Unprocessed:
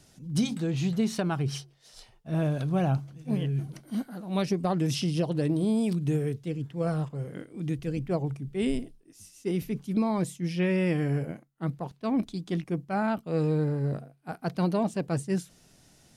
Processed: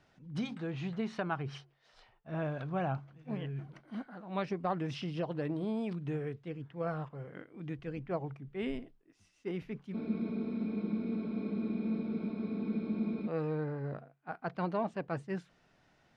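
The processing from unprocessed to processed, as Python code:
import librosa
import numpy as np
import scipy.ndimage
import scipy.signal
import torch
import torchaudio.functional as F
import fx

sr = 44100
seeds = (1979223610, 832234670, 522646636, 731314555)

y = scipy.signal.sosfilt(scipy.signal.butter(2, 1500.0, 'lowpass', fs=sr, output='sos'), x)
y = fx.tilt_shelf(y, sr, db=-8.5, hz=750.0)
y = fx.spec_freeze(y, sr, seeds[0], at_s=9.95, hold_s=3.32)
y = y * librosa.db_to_amplitude(-3.0)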